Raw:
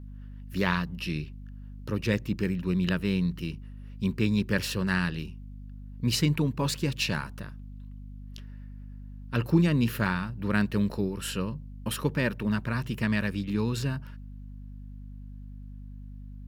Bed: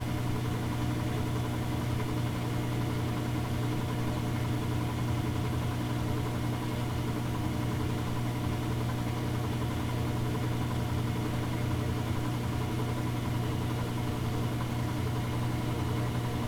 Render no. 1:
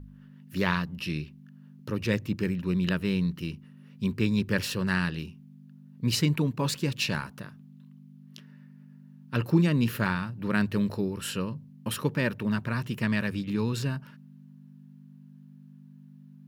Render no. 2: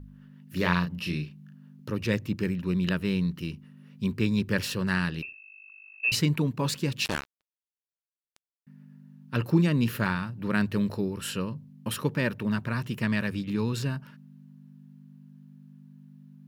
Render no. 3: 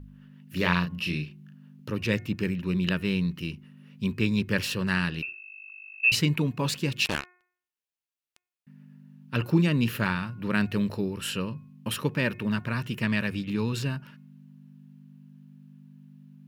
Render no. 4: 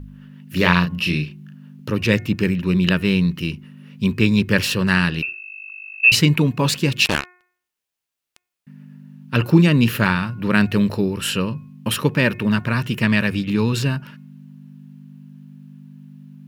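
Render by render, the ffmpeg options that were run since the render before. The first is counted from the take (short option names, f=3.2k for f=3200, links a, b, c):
-af "bandreject=f=50:t=h:w=4,bandreject=f=100:t=h:w=4"
-filter_complex "[0:a]asettb=1/sr,asplit=3[a][b][c];[a]atrim=end=0.484[d];[b]atrim=start=0.48:end=1.54,asetpts=PTS-STARTPTS,afade=t=in:d=0.004:c=qsin,afade=t=out:st=1.056:d=0.004:c=qsin,asplit=2[e][f];[f]adelay=34,volume=-6dB[g];[e][g]amix=inputs=2:normalize=0,atrim=end_sample=46746[h];[c]atrim=start=1.536[i];[d][h]acrossfade=d=0.004:c1=hsin:c2=qsin[j];[j][i]acrossfade=d=0.004:c1=qsin:c2=hsin,asettb=1/sr,asplit=3[k][l][m];[k]atrim=end=5.224[n];[l]atrim=start=5.22:end=6.12,asetpts=PTS-STARTPTS,afade=t=in:d=0.004:c=qsin,afade=t=out:st=0.896:d=0.004:c=qsin,lowpass=f=2.4k:t=q:w=0.5098,lowpass=f=2.4k:t=q:w=0.6013,lowpass=f=2.4k:t=q:w=0.9,lowpass=f=2.4k:t=q:w=2.563,afreqshift=-2800[o];[m]atrim=start=6.116[p];[n][o]acrossfade=d=0.004:c1=hsin:c2=qsin[q];[q][p]acrossfade=d=0.004:c1=qsin:c2=hsin,asettb=1/sr,asplit=3[r][s][t];[r]atrim=end=7.054[u];[s]atrim=start=7.05:end=8.67,asetpts=PTS-STARTPTS,afade=t=in:d=0.004:c=qsin,afade=t=out:st=1.616:d=0.004:c=qsin,acrusher=bits=3:mix=0:aa=0.5[v];[t]atrim=start=8.666[w];[u][v]acrossfade=d=0.004:c1=hsin:c2=qsin[x];[x][w]acrossfade=d=0.004:c1=qsin:c2=hsin"
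-af "equalizer=f=2.7k:t=o:w=0.69:g=5,bandreject=f=360.1:t=h:w=4,bandreject=f=720.2:t=h:w=4,bandreject=f=1.0803k:t=h:w=4,bandreject=f=1.4404k:t=h:w=4,bandreject=f=1.8005k:t=h:w=4,bandreject=f=2.1606k:t=h:w=4,bandreject=f=2.5207k:t=h:w=4"
-af "volume=9dB,alimiter=limit=-1dB:level=0:latency=1"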